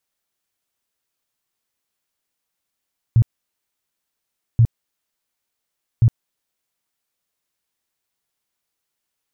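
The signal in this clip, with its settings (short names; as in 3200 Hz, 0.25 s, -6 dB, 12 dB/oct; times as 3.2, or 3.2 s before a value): tone bursts 115 Hz, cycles 7, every 1.43 s, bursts 3, -8.5 dBFS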